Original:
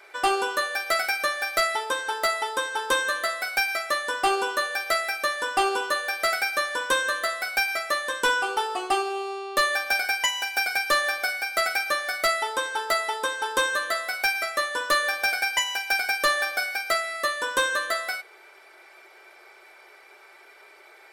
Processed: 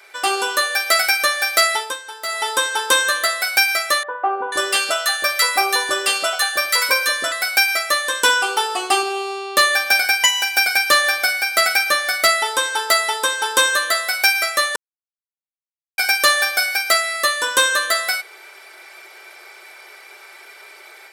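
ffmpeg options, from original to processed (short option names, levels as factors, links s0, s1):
-filter_complex "[0:a]asettb=1/sr,asplit=3[s0][s1][s2];[s0]atrim=end=4.034[s3];[s1]atrim=start=4.03:end=7.32,asetpts=PTS-STARTPTS,afade=t=in:d=0.004:c=qsin,afade=t=out:st=3.286:d=0.004:c=qsin,acrossover=split=390|1300[s4][s5][s6];[s4]adelay=320[s7];[s6]adelay=490[s8];[s7][s5][s8]amix=inputs=3:normalize=0,atrim=end_sample=145089[s9];[s2]atrim=start=7.316[s10];[s3][s9]acrossfade=d=0.004:c1=hsin:c2=qsin[s11];[s11][s10]acrossfade=d=0.004:c1=qsin:c2=hsin,asettb=1/sr,asplit=3[s12][s13][s14];[s12]atrim=end=9.034[s15];[s13]atrim=start=9.03:end=12.46,asetpts=PTS-STARTPTS,afade=t=in:d=0.004:c=qsin,afade=t=out:st=3.426:d=0.004:c=qsin,bass=f=250:g=6,treble=f=4000:g=-2[s16];[s14]atrim=start=12.456[s17];[s15][s16]acrossfade=d=0.004:c1=hsin:c2=qsin[s18];[s18][s17]acrossfade=d=0.004:c1=qsin:c2=hsin,asplit=5[s19][s20][s21][s22][s23];[s19]atrim=end=1.99,asetpts=PTS-STARTPTS,afade=t=out:st=1.75:d=0.24:silence=0.237137[s24];[s20]atrim=start=1.99:end=2.25,asetpts=PTS-STARTPTS,volume=0.237[s25];[s21]atrim=start=2.25:end=14.76,asetpts=PTS-STARTPTS,afade=t=in:d=0.24:silence=0.237137,afade=t=out:st=12.506:d=0.004:c=hsin[s26];[s22]atrim=start=14.76:end=15.98,asetpts=PTS-STARTPTS,volume=0[s27];[s23]atrim=start=15.98,asetpts=PTS-STARTPTS,afade=t=in:d=0.004:c=hsin[s28];[s24][s25][s26][s27][s28]concat=n=5:v=0:a=1,highpass=f=160:p=1,highshelf=f=2400:g=9.5,dynaudnorm=f=260:g=3:m=1.88"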